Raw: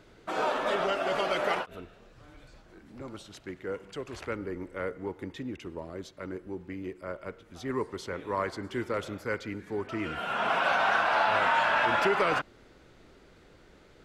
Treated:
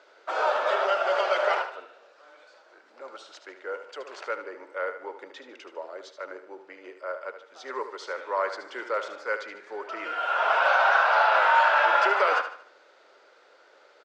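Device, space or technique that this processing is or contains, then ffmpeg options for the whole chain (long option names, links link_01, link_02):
phone speaker on a table: -af "highpass=frequency=450:width=0.5412,highpass=frequency=450:width=1.3066,equalizer=frequency=570:width_type=q:width=4:gain=6,equalizer=frequency=900:width_type=q:width=4:gain=4,equalizer=frequency=1400:width_type=q:width=4:gain=7,equalizer=frequency=4800:width_type=q:width=4:gain=3,lowpass=frequency=7000:width=0.5412,lowpass=frequency=7000:width=1.3066,aecho=1:1:75|150|225|300:0.316|0.12|0.0457|0.0174"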